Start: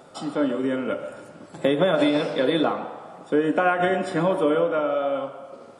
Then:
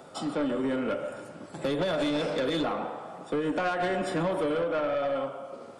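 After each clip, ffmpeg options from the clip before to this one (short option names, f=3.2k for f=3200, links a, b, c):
-filter_complex "[0:a]acrossover=split=140|3000[a][b][c];[b]acompressor=threshold=-21dB:ratio=6[d];[a][d][c]amix=inputs=3:normalize=0,aeval=exprs='(tanh(14.1*val(0)+0.05)-tanh(0.05))/14.1':c=same"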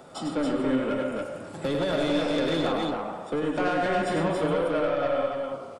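-filter_complex "[0:a]lowshelf=f=85:g=6,asplit=2[a][b];[b]aecho=0:1:99.13|279.9:0.562|0.708[c];[a][c]amix=inputs=2:normalize=0"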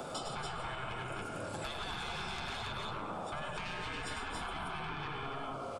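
-filter_complex "[0:a]afftfilt=real='re*lt(hypot(re,im),0.0891)':imag='im*lt(hypot(re,im),0.0891)':win_size=1024:overlap=0.75,bandreject=f=1.9k:w=8,acrossover=split=100|640[a][b][c];[a]acompressor=threshold=-54dB:ratio=4[d];[b]acompressor=threshold=-55dB:ratio=4[e];[c]acompressor=threshold=-50dB:ratio=4[f];[d][e][f]amix=inputs=3:normalize=0,volume=8dB"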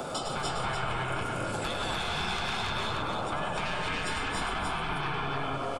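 -af "aecho=1:1:302:0.708,volume=6.5dB"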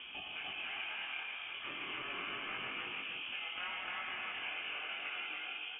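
-af "highpass=910,flanger=delay=20:depth=3.7:speed=0.35,lowpass=f=3.2k:t=q:w=0.5098,lowpass=f=3.2k:t=q:w=0.6013,lowpass=f=3.2k:t=q:w=0.9,lowpass=f=3.2k:t=q:w=2.563,afreqshift=-3800,volume=-3.5dB"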